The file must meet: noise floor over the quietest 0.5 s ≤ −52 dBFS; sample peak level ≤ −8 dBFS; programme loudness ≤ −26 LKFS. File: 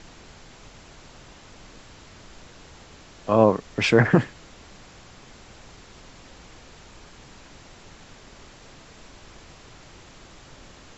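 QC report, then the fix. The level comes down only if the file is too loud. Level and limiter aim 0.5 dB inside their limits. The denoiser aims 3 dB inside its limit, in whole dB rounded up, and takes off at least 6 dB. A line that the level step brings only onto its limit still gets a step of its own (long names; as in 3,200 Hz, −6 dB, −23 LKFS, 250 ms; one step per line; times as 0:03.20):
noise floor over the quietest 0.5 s −48 dBFS: out of spec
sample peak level −3.5 dBFS: out of spec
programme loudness −21.0 LKFS: out of spec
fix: level −5.5 dB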